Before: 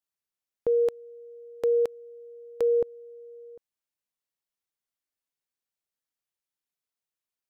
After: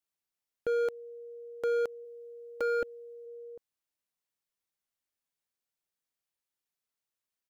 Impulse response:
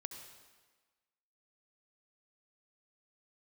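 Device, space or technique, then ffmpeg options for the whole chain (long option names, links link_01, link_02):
clipper into limiter: -filter_complex "[0:a]asoftclip=type=hard:threshold=-24.5dB,alimiter=level_in=2.5dB:limit=-24dB:level=0:latency=1,volume=-2.5dB,asplit=3[link_01][link_02][link_03];[link_01]afade=type=out:start_time=2.04:duration=0.02[link_04];[link_02]aecho=1:1:3.5:0.83,afade=type=in:start_time=2.04:duration=0.02,afade=type=out:start_time=3.25:duration=0.02[link_05];[link_03]afade=type=in:start_time=3.25:duration=0.02[link_06];[link_04][link_05][link_06]amix=inputs=3:normalize=0"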